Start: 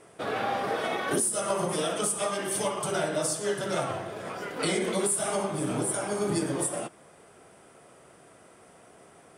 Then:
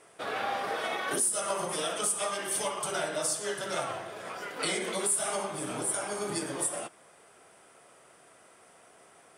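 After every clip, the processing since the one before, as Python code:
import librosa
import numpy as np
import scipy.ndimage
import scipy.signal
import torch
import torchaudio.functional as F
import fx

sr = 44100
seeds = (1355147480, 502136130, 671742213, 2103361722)

y = fx.low_shelf(x, sr, hz=440.0, db=-11.5)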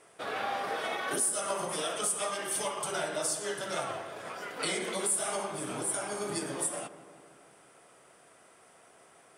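y = fx.echo_filtered(x, sr, ms=164, feedback_pct=67, hz=1900.0, wet_db=-13.5)
y = y * librosa.db_to_amplitude(-1.5)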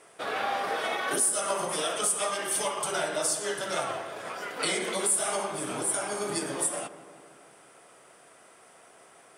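y = fx.low_shelf(x, sr, hz=170.0, db=-5.5)
y = y * librosa.db_to_amplitude(4.0)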